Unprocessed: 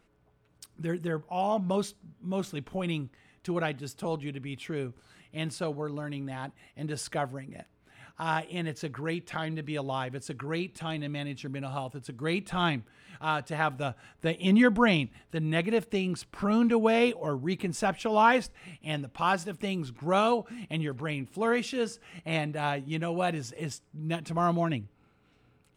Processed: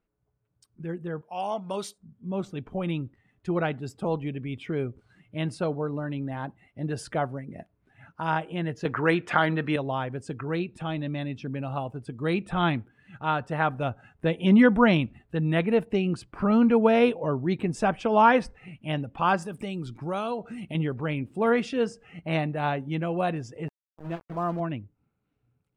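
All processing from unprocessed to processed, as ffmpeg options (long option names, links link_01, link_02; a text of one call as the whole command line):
ffmpeg -i in.wav -filter_complex "[0:a]asettb=1/sr,asplit=3[link_01][link_02][link_03];[link_01]atrim=end=1.214[link_04];[link_02]atrim=start=1.21:end=1.98,asetpts=PTS-STARTPTS,afade=type=in:duration=0.004:curve=qsin,afade=type=out:start_time=0.766:duration=0.004:curve=qsin,highpass=frequency=400:poles=1,highshelf=frequency=2400:gain=11[link_05];[link_03]atrim=start=1.976[link_06];[link_04][link_05]acrossfade=duration=0.004:curve1=hsin:curve2=qsin[link_07];[link_07][link_06]acrossfade=duration=0.004:curve1=qsin:curve2=hsin,asettb=1/sr,asplit=3[link_08][link_09][link_10];[link_08]atrim=end=8.854[link_11];[link_09]atrim=start=8.85:end=9.76,asetpts=PTS-STARTPTS,afade=type=in:duration=0.004:curve=qsin,afade=type=out:start_time=0.906:duration=0.004:curve=qsin,highpass=frequency=220:poles=1,equalizer=frequency=1400:width_type=o:width=1.5:gain=5.5,acontrast=73[link_12];[link_10]atrim=start=9.756[link_13];[link_11][link_12]acrossfade=duration=0.004:curve1=hsin:curve2=qsin[link_14];[link_14][link_13]acrossfade=duration=0.004:curve1=qsin:curve2=hsin,asettb=1/sr,asplit=3[link_15][link_16][link_17];[link_15]atrim=end=19.424[link_18];[link_16]atrim=start=19.42:end=20.75,asetpts=PTS-STARTPTS,afade=type=in:duration=0.004:curve=qsin,afade=type=out:start_time=1.326:duration=0.004:curve=qsin,highshelf=frequency=4700:gain=11,acompressor=threshold=-37dB:ratio=2:attack=3.2:release=140:knee=1:detection=peak[link_19];[link_17]atrim=start=20.746[link_20];[link_18][link_19]acrossfade=duration=0.004:curve1=hsin:curve2=qsin[link_21];[link_21][link_20]acrossfade=duration=0.004:curve1=qsin:curve2=hsin,asettb=1/sr,asplit=3[link_22][link_23][link_24];[link_22]atrim=end=23.684[link_25];[link_23]atrim=start=23.68:end=24.6,asetpts=PTS-STARTPTS,afade=type=in:duration=0.004:curve=qsin,afade=type=out:start_time=0.916:duration=0.004:curve=qsin,lowpass=2000,equalizer=frequency=110:width_type=o:width=0.43:gain=-14.5,aeval=exprs='val(0)*gte(abs(val(0)),0.015)':channel_layout=same[link_26];[link_24]atrim=start=24.596[link_27];[link_25][link_26]acrossfade=duration=0.004:curve1=hsin:curve2=qsin[link_28];[link_28][link_27]acrossfade=duration=0.004:curve1=qsin:curve2=hsin,afftdn=noise_reduction=12:noise_floor=-51,highshelf=frequency=2500:gain=-9.5,dynaudnorm=framelen=260:gausssize=21:maxgain=7dB,volume=-2dB" out.wav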